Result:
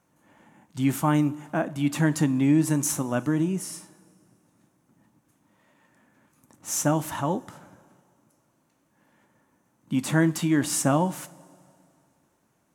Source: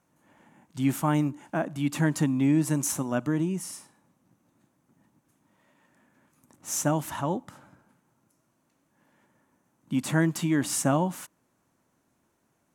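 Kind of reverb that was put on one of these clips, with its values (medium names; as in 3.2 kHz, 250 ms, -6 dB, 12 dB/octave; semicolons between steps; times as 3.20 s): two-slope reverb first 0.25 s, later 2.5 s, from -19 dB, DRR 12.5 dB; trim +2 dB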